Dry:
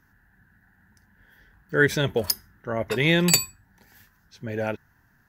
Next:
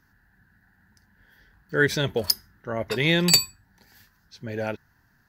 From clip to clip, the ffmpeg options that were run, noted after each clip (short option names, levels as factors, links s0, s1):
-af "equalizer=f=4500:w=2.6:g=7.5,volume=0.841"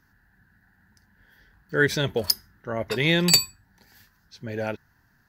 -af anull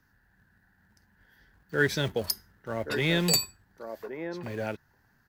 -filter_complex "[0:a]acrossover=split=230|1600|6500[s0][s1][s2][s3];[s0]acrusher=bits=2:mode=log:mix=0:aa=0.000001[s4];[s1]aecho=1:1:1126:0.562[s5];[s2]alimiter=limit=0.141:level=0:latency=1:release=30[s6];[s4][s5][s6][s3]amix=inputs=4:normalize=0,volume=0.631"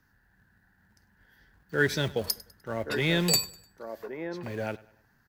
-af "aecho=1:1:100|200|300:0.0891|0.0348|0.0136"